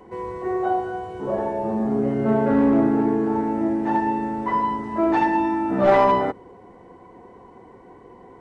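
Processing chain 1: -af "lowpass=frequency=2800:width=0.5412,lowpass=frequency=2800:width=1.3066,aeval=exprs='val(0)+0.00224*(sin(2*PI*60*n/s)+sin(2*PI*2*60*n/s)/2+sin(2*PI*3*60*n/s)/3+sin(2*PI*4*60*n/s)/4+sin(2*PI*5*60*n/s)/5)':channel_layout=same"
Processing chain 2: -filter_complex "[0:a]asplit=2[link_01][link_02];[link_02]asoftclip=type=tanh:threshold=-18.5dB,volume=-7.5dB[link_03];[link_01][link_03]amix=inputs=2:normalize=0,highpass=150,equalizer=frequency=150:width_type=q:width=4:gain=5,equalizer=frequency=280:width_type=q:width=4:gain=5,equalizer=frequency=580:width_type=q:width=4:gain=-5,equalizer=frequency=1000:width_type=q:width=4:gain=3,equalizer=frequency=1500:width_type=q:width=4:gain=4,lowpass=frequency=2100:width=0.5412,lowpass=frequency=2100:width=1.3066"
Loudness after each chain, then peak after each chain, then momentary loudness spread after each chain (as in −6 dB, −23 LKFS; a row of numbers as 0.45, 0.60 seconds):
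−21.5, −18.0 LKFS; −5.0, −4.0 dBFS; 10, 11 LU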